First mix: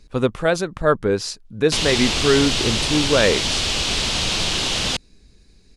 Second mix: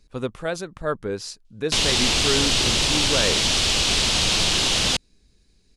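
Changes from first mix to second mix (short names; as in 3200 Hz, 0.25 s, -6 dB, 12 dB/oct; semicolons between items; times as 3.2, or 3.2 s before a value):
speech -8.5 dB; master: add high shelf 5400 Hz +4.5 dB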